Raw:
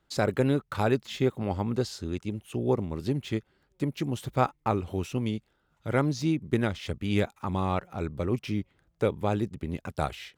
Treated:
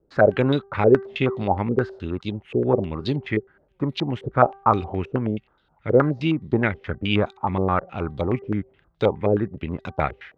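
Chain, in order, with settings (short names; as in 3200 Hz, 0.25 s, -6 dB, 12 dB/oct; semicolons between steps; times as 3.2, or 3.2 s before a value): de-hum 390.9 Hz, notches 5; wow and flutter 24 cents; stepped low-pass 9.5 Hz 460–3800 Hz; gain +4 dB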